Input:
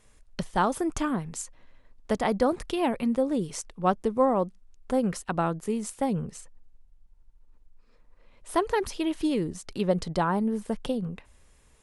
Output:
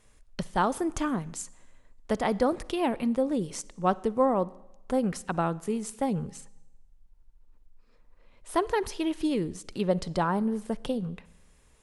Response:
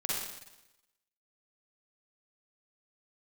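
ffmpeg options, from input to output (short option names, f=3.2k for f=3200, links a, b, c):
-filter_complex "[0:a]asplit=2[a][b];[1:a]atrim=start_sample=2205,lowpass=8.8k[c];[b][c]afir=irnorm=-1:irlink=0,volume=-24.5dB[d];[a][d]amix=inputs=2:normalize=0,volume=-1.5dB"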